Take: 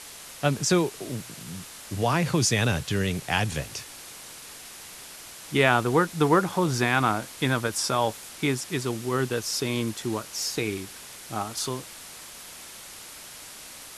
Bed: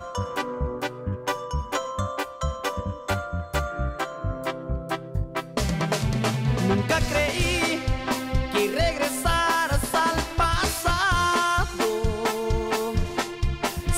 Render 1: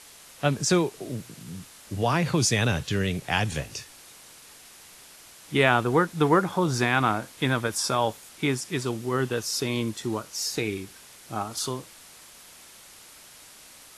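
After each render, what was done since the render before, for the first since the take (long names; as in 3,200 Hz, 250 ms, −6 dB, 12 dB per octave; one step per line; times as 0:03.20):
noise reduction from a noise print 6 dB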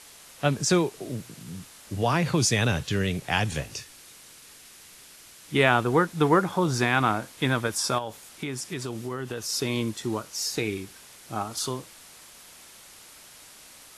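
0:03.80–0:05.54: parametric band 780 Hz −4.5 dB 1.2 octaves
0:07.98–0:09.49: downward compressor, threshold −28 dBFS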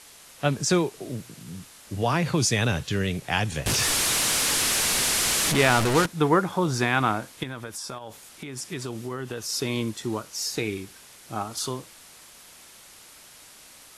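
0:03.66–0:06.06: linear delta modulator 64 kbit/s, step −17 dBFS
0:07.43–0:08.57: downward compressor 4 to 1, threshold −33 dBFS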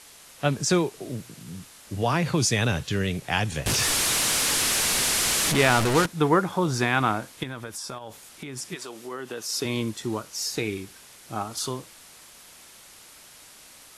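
0:08.74–0:09.64: high-pass filter 580 Hz → 150 Hz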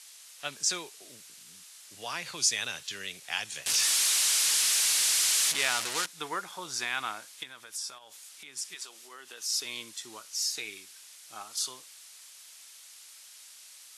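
resonant band-pass 6,600 Hz, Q 0.56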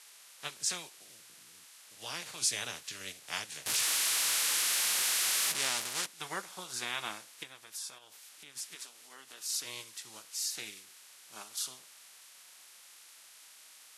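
ceiling on every frequency bin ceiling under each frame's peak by 15 dB
flanger 0.17 Hz, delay 4.9 ms, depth 2.1 ms, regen −60%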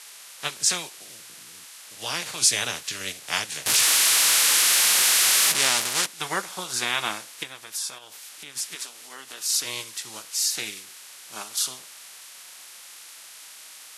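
level +11 dB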